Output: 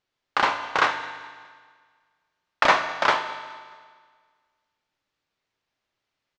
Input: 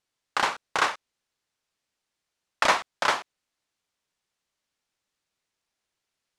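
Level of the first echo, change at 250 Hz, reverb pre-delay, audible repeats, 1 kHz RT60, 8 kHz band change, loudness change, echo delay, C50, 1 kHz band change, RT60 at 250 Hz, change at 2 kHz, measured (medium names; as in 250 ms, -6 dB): -21.5 dB, +4.0 dB, 3 ms, 3, 1.7 s, -5.5 dB, +3.0 dB, 211 ms, 9.0 dB, +4.0 dB, 1.6 s, +4.0 dB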